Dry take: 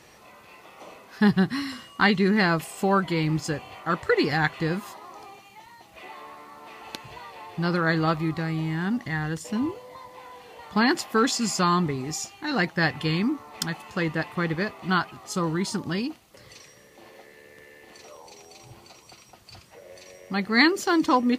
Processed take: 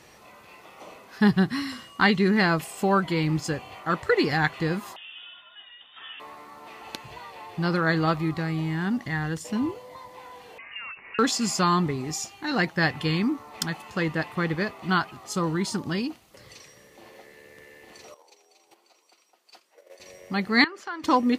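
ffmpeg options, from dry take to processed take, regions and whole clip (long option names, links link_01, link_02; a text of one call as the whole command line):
ffmpeg -i in.wav -filter_complex "[0:a]asettb=1/sr,asplit=3[link_01][link_02][link_03];[link_01]atrim=end=4.964[link_04];[link_02]atrim=start=4.96:end=6.2,asetpts=PTS-STARTPTS,afade=type=in:duration=0.004:curve=qsin,afade=type=out:start_time=1.236:duration=0.004:curve=qsin,asplit=2[link_05][link_06];[link_06]adelay=16,volume=-13dB[link_07];[link_05][link_07]amix=inputs=2:normalize=0,atrim=end_sample=54684,lowpass=frequency=3200:width_type=q:width=0.5098,lowpass=frequency=3200:width_type=q:width=0.6013,lowpass=frequency=3200:width_type=q:width=0.9,lowpass=frequency=3200:width_type=q:width=2.563,afreqshift=-3800[link_08];[link_03]atrim=start=6.196[link_09];[link_04][link_08]acrossfade=duration=0.004:curve1=hsin:curve2=qsin[link_10];[link_10][link_09]acrossfade=duration=0.004:curve1=qsin:curve2=hsin,asettb=1/sr,asplit=3[link_11][link_12][link_13];[link_11]atrim=end=10.584[link_14];[link_12]atrim=start=10.58:end=11.19,asetpts=PTS-STARTPTS,afade=type=in:duration=0.004:curve=qsin,afade=type=out:start_time=0.606:duration=0.004:curve=qsin,acompressor=threshold=-34dB:ratio=10:attack=3.2:release=140:knee=1:detection=peak,lowpass=frequency=2600:width_type=q:width=0.5098,lowpass=frequency=2600:width_type=q:width=0.6013,lowpass=frequency=2600:width_type=q:width=0.9,lowpass=frequency=2600:width_type=q:width=2.563,afreqshift=-3000[link_15];[link_13]atrim=start=11.186[link_16];[link_14][link_15]acrossfade=duration=0.004:curve1=hsin:curve2=qsin[link_17];[link_17][link_16]acrossfade=duration=0.004:curve1=qsin:curve2=hsin,asettb=1/sr,asplit=3[link_18][link_19][link_20];[link_18]atrim=end=18.144[link_21];[link_19]atrim=start=18.14:end=20,asetpts=PTS-STARTPTS,afade=type=in:duration=0.004:curve=qsin,afade=type=out:start_time=1.856:duration=0.004:curve=qsin,agate=range=-12dB:threshold=-46dB:ratio=16:release=100:detection=peak,highpass=frequency=320:width=0.5412,highpass=frequency=320:width=1.3066[link_22];[link_20]atrim=start=19.996[link_23];[link_21][link_22]acrossfade=duration=0.004:curve1=hsin:curve2=qsin[link_24];[link_24][link_23]acrossfade=duration=0.004:curve1=qsin:curve2=hsin,asettb=1/sr,asplit=3[link_25][link_26][link_27];[link_25]atrim=end=20.644[link_28];[link_26]atrim=start=20.64:end=21.04,asetpts=PTS-STARTPTS,afade=type=in:duration=0.004:curve=qsin,afade=type=out:start_time=0.396:duration=0.004:curve=qsin,bandpass=frequency=1400:width_type=q:width=1.3,acompressor=threshold=-34dB:ratio=2:attack=3.2:release=140:knee=1:detection=peak[link_29];[link_27]atrim=start=21.036[link_30];[link_28][link_29]acrossfade=duration=0.004:curve1=hsin:curve2=qsin[link_31];[link_31][link_30]acrossfade=duration=0.004:curve1=qsin:curve2=hsin" out.wav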